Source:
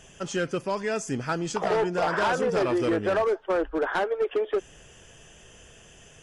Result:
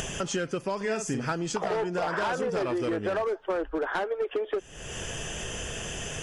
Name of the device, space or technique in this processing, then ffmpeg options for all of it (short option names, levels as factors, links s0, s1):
upward and downward compression: -filter_complex "[0:a]acompressor=mode=upward:threshold=0.0282:ratio=2.5,acompressor=threshold=0.02:ratio=5,asettb=1/sr,asplit=3[s0][s1][s2];[s0]atrim=end=0.764[s3];[s1]atrim=start=0.76:end=1.32,asetpts=PTS-STARTPTS,afade=t=in:d=0.004:c=qsin,afade=t=out:st=0.556:d=0.004:c=qsin,asplit=2[s4][s5];[s5]adelay=46,volume=0.447[s6];[s4][s6]amix=inputs=2:normalize=0,atrim=end_sample=24696[s7];[s2]atrim=start=1.316[s8];[s3][s7]acrossfade=d=0.004:c1=hsin:c2=qsin[s9];[s9][s8]acrossfade=d=0.004:c1=qsin:c2=hsin,volume=2.11"